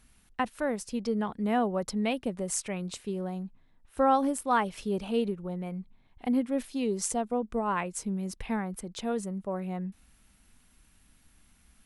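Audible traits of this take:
background noise floor −63 dBFS
spectral slope −5.0 dB per octave

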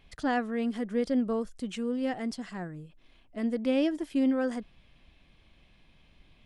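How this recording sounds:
background noise floor −62 dBFS
spectral slope −4.5 dB per octave

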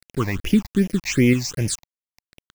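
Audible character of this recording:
tremolo saw up 1.5 Hz, depth 40%
a quantiser's noise floor 6 bits, dither none
phaser sweep stages 8, 2.6 Hz, lowest notch 400–1,300 Hz

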